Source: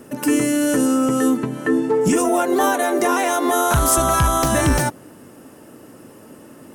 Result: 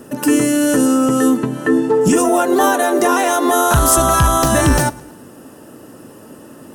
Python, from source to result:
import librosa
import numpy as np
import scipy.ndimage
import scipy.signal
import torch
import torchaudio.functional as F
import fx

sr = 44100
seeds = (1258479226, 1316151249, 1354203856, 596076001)

y = fx.notch(x, sr, hz=2200.0, q=6.9)
y = fx.echo_feedback(y, sr, ms=108, feedback_pct=50, wet_db=-23.0)
y = y * 10.0 ** (4.0 / 20.0)